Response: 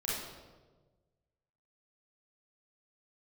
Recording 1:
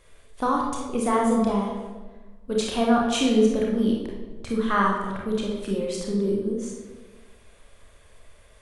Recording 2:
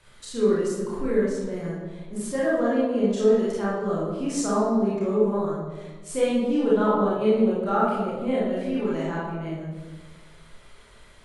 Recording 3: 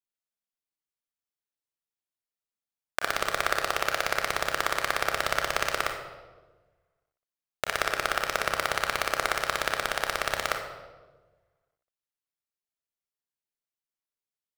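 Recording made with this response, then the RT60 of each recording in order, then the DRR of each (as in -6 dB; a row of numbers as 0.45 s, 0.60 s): 2; 1.3 s, 1.3 s, 1.3 s; -2.0 dB, -7.5 dB, 2.5 dB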